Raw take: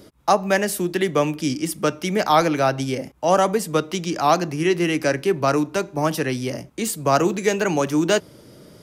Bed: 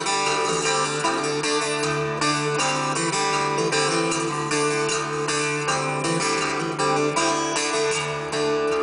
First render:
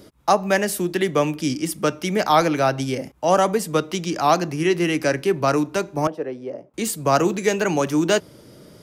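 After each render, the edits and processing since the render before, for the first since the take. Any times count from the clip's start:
0:06.07–0:06.74: resonant band-pass 520 Hz, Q 1.7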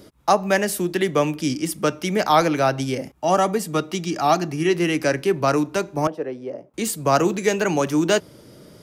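0:03.14–0:04.69: notch comb filter 510 Hz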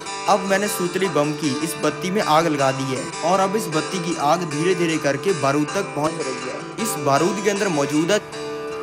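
mix in bed −6.5 dB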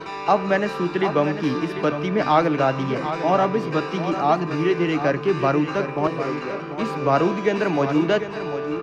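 high-frequency loss of the air 270 metres
single-tap delay 747 ms −10 dB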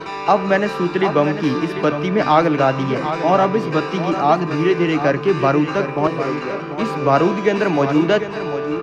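level +4 dB
brickwall limiter −2 dBFS, peak gain reduction 1 dB

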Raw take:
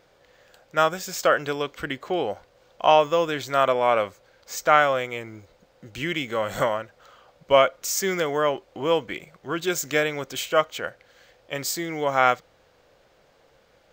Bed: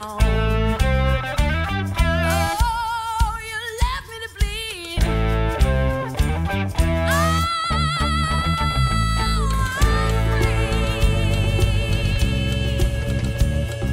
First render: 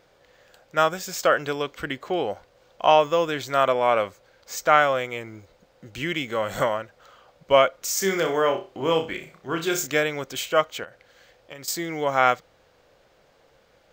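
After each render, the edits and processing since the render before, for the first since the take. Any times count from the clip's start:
0:07.98–0:09.87: flutter between parallel walls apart 5.3 metres, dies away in 0.3 s
0:10.83–0:11.68: downward compressor 12 to 1, threshold −35 dBFS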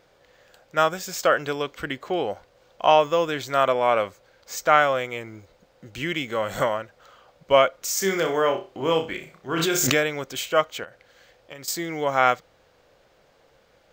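0:09.53–0:10.12: background raised ahead of every attack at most 22 dB per second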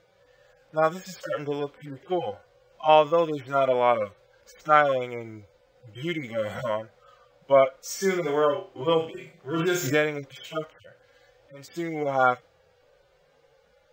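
harmonic-percussive split with one part muted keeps harmonic
high-shelf EQ 7,100 Hz −4.5 dB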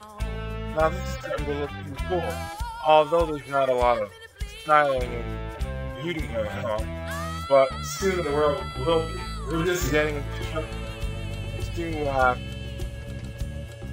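mix in bed −13 dB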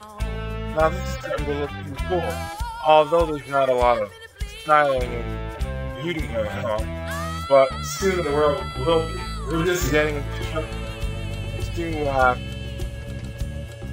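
level +3 dB
brickwall limiter −3 dBFS, peak gain reduction 2 dB

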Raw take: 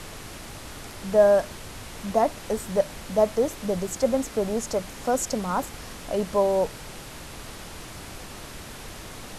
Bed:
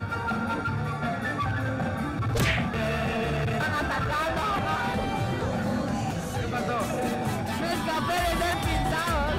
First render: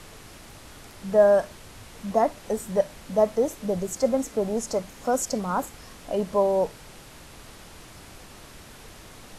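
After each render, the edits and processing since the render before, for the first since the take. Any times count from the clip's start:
noise reduction from a noise print 6 dB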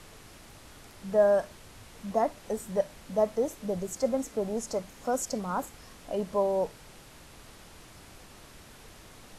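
level −5 dB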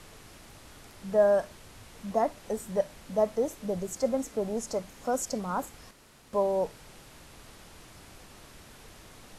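0:05.91–0:06.33: fill with room tone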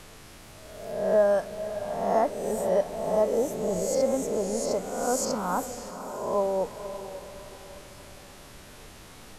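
peak hold with a rise ahead of every peak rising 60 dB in 1.01 s
feedback delay with all-pass diffusion 524 ms, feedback 41%, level −11 dB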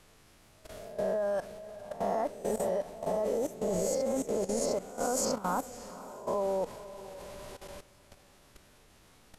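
output level in coarse steps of 15 dB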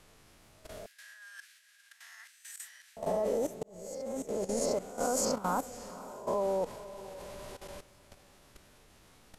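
0:00.86–0:02.97: elliptic high-pass filter 1,600 Hz, stop band 70 dB
0:03.63–0:04.67: fade in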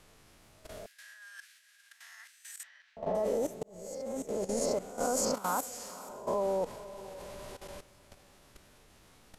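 0:02.63–0:03.15: high-frequency loss of the air 230 metres
0:05.34–0:06.09: spectral tilt +2.5 dB per octave

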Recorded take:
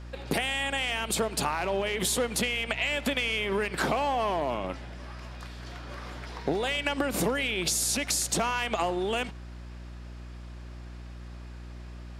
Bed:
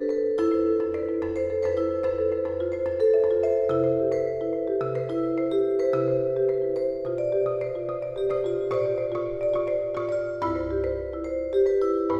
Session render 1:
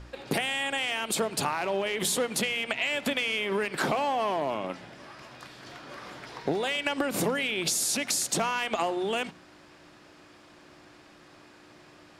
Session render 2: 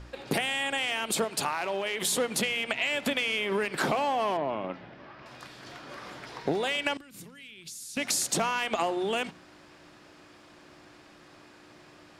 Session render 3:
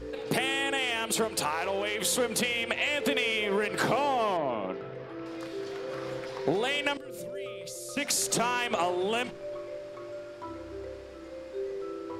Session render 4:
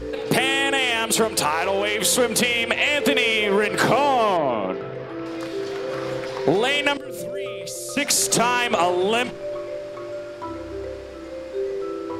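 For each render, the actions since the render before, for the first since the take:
hum removal 60 Hz, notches 4
0:01.24–0:02.12: low-shelf EQ 410 Hz −7 dB; 0:04.37–0:05.26: high-frequency loss of the air 260 metres; 0:06.97–0:07.97: guitar amp tone stack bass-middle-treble 6-0-2
mix in bed −14 dB
level +8.5 dB

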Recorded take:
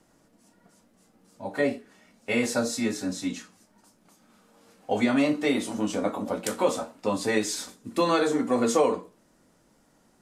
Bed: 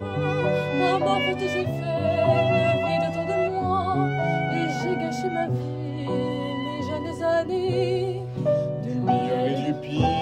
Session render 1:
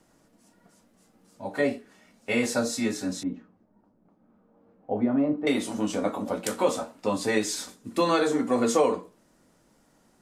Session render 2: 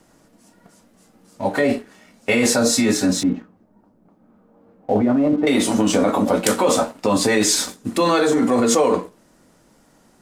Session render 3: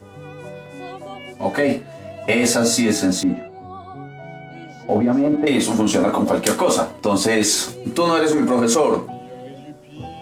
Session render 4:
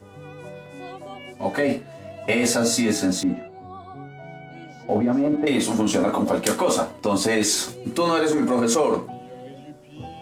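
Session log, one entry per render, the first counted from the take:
0:03.23–0:05.47: Bessel low-pass filter 620 Hz
in parallel at +2.5 dB: compressor whose output falls as the input rises −28 dBFS, ratio −0.5; on the sum: leveller curve on the samples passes 1
mix in bed −12.5 dB
level −3.5 dB

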